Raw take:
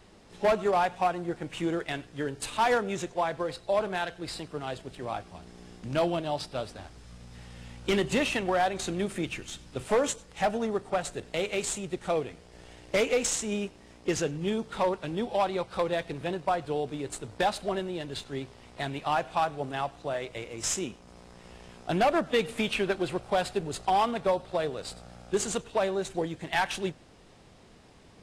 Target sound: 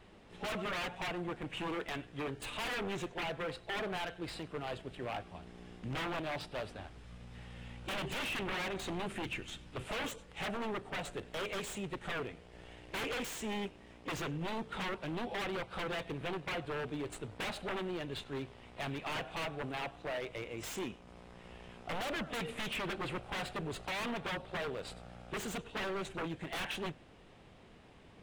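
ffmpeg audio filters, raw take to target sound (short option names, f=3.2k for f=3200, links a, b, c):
-af "aeval=exprs='0.0335*(abs(mod(val(0)/0.0335+3,4)-2)-1)':c=same,highshelf=f=3.9k:t=q:w=1.5:g=-6.5,volume=-3dB"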